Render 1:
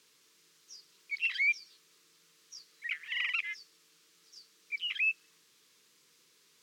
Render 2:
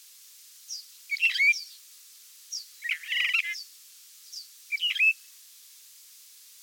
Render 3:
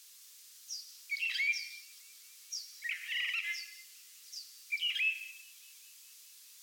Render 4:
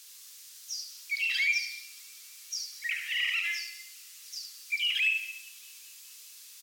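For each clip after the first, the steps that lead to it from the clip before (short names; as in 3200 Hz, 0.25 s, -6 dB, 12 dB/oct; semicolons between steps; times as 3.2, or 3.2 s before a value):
tilt +5.5 dB/oct
limiter -22.5 dBFS, peak gain reduction 10.5 dB; thin delay 0.204 s, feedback 74%, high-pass 3700 Hz, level -22 dB; non-linear reverb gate 0.34 s falling, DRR 7.5 dB; gain -5 dB
in parallel at -9.5 dB: soft clip -31 dBFS, distortion -14 dB; on the sum: echo 72 ms -5.5 dB; gain +2.5 dB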